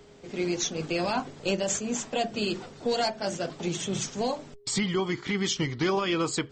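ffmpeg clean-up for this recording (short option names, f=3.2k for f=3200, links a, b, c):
-af "bandreject=f=410:w=30"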